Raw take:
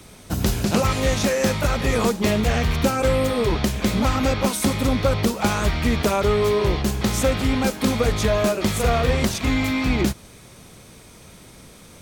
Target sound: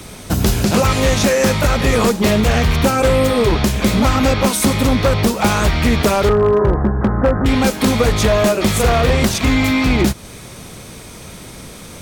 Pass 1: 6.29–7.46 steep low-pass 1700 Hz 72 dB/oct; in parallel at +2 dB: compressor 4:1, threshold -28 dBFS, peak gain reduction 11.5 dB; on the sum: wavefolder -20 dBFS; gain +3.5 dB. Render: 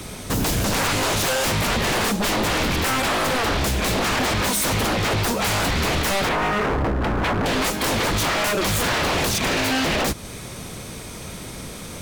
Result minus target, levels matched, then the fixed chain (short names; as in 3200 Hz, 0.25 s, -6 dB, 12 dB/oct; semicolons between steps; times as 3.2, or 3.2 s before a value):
wavefolder: distortion +27 dB
6.29–7.46 steep low-pass 1700 Hz 72 dB/oct; in parallel at +2 dB: compressor 4:1, threshold -28 dBFS, peak gain reduction 11.5 dB; on the sum: wavefolder -10 dBFS; gain +3.5 dB